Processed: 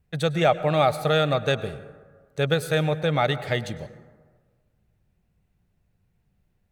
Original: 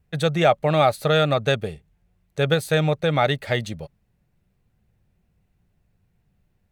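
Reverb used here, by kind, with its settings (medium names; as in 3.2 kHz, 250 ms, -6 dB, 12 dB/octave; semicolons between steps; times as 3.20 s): plate-style reverb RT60 1.5 s, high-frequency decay 0.4×, pre-delay 90 ms, DRR 14 dB; trim -2.5 dB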